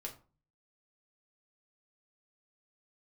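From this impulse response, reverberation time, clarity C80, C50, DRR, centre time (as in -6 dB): 0.35 s, 17.0 dB, 12.0 dB, -0.5 dB, 14 ms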